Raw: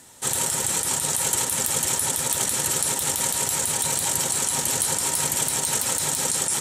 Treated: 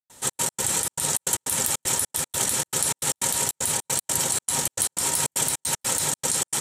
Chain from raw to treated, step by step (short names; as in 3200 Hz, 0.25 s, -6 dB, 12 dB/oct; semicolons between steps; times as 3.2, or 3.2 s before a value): step gate ".xx.x.xxx" 154 bpm -60 dB